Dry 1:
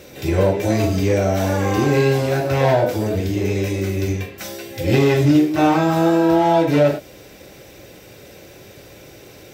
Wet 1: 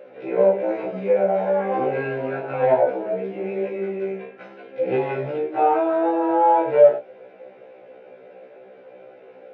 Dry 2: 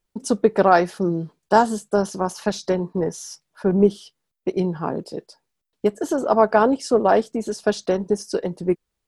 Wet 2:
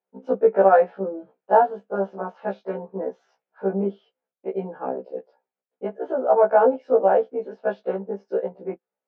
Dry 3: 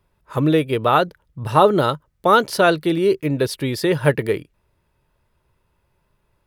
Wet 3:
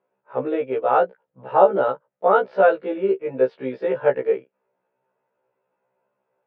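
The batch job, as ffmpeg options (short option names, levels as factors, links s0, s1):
-af "highpass=f=220:w=0.5412,highpass=f=220:w=1.3066,equalizer=f=220:t=q:w=4:g=-5,equalizer=f=310:t=q:w=4:g=-10,equalizer=f=510:t=q:w=4:g=7,equalizer=f=760:t=q:w=4:g=4,equalizer=f=1100:t=q:w=4:g=-6,equalizer=f=1900:t=q:w=4:g=-7,lowpass=f=2100:w=0.5412,lowpass=f=2100:w=1.3066,afftfilt=real='re*1.73*eq(mod(b,3),0)':imag='im*1.73*eq(mod(b,3),0)':win_size=2048:overlap=0.75"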